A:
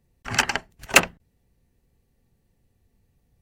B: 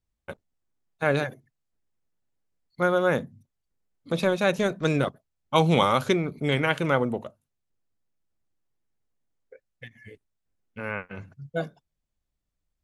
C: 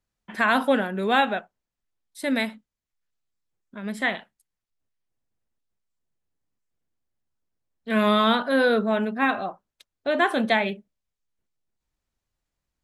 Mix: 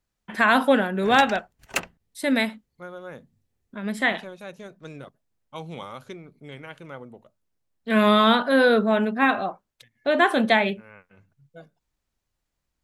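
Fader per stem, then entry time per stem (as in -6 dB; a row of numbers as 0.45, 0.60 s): -11.5, -16.5, +2.5 dB; 0.80, 0.00, 0.00 s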